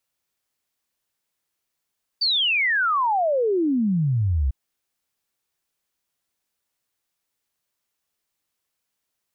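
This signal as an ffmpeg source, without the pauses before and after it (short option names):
-f lavfi -i "aevalsrc='0.126*clip(min(t,2.3-t)/0.01,0,1)*sin(2*PI*4700*2.3/log(62/4700)*(exp(log(62/4700)*t/2.3)-1))':d=2.3:s=44100"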